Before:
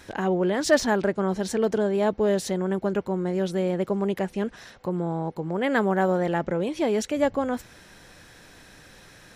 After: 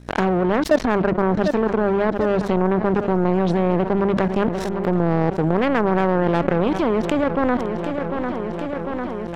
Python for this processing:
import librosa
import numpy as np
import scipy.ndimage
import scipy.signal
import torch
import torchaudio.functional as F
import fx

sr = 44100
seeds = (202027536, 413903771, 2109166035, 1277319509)

y = fx.env_lowpass_down(x, sr, base_hz=1800.0, full_db=-20.0)
y = fx.low_shelf(y, sr, hz=470.0, db=6.0)
y = fx.hum_notches(y, sr, base_hz=50, count=4)
y = fx.level_steps(y, sr, step_db=15)
y = fx.leveller(y, sr, passes=2)
y = fx.add_hum(y, sr, base_hz=60, snr_db=23)
y = fx.power_curve(y, sr, exponent=2.0)
y = fx.echo_feedback(y, sr, ms=749, feedback_pct=50, wet_db=-18.5)
y = fx.env_flatten(y, sr, amount_pct=70)
y = F.gain(torch.from_numpy(y), 1.5).numpy()